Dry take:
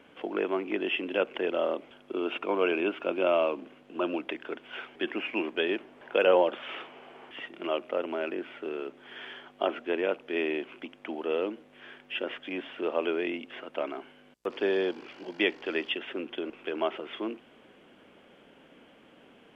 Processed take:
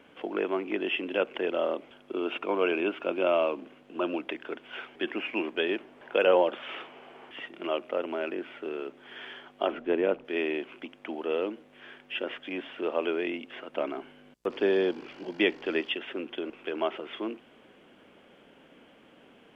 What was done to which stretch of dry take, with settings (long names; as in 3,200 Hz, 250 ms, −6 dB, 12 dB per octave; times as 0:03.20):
0:09.72–0:10.25: spectral tilt −2.5 dB per octave
0:13.73–0:15.81: low-shelf EQ 330 Hz +6 dB